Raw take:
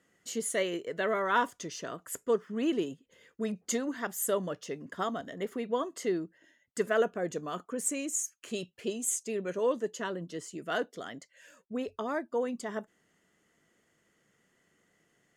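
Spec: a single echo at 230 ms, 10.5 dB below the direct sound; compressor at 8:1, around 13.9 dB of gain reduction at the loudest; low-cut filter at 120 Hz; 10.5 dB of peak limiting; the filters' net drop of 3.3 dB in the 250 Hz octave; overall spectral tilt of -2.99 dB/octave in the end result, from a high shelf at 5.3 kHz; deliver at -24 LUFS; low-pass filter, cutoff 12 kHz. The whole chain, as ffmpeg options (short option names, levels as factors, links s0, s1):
-af "highpass=120,lowpass=12000,equalizer=f=250:t=o:g=-4,highshelf=f=5300:g=5.5,acompressor=threshold=0.0141:ratio=8,alimiter=level_in=2.99:limit=0.0631:level=0:latency=1,volume=0.335,aecho=1:1:230:0.299,volume=9.44"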